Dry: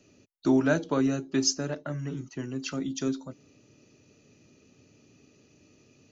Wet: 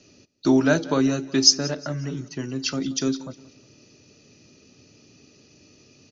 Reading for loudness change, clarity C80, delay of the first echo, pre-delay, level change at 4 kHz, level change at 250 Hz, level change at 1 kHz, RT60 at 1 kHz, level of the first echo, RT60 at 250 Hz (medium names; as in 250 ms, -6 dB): +6.5 dB, no reverb, 180 ms, no reverb, +13.0 dB, +4.5 dB, +5.0 dB, no reverb, -20.0 dB, no reverb